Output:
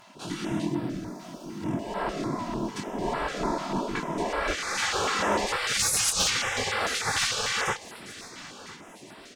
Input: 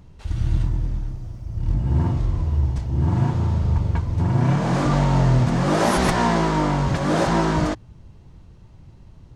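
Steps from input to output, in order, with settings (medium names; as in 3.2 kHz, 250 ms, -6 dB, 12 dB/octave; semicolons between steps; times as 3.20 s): 5.79–6.28 s: frequency weighting D; chorus 2.5 Hz, delay 20 ms, depth 5.5 ms; comb 3 ms, depth 46%; in parallel at +0.5 dB: compression, threshold -32 dBFS, peak gain reduction 16.5 dB; on the sum: spectral gate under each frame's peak -20 dB weak; one-sided clip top -27.5 dBFS; on a send: feedback delay 1010 ms, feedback 41%, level -17 dB; on the sum: step-sequenced notch 6.7 Hz 430–6400 Hz; trim +8.5 dB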